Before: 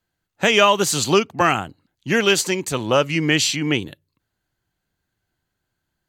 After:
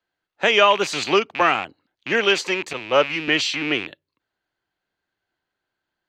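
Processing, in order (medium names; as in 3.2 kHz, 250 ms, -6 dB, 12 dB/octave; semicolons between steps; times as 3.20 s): rattle on loud lows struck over -34 dBFS, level -16 dBFS; three-band isolator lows -15 dB, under 290 Hz, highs -21 dB, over 5.1 kHz; 2.73–3.28 s: three bands expanded up and down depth 100%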